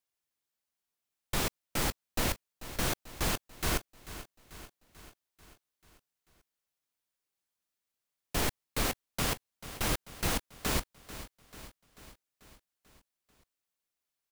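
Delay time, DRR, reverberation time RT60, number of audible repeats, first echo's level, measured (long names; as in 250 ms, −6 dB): 440 ms, no reverb audible, no reverb audible, 5, −15.0 dB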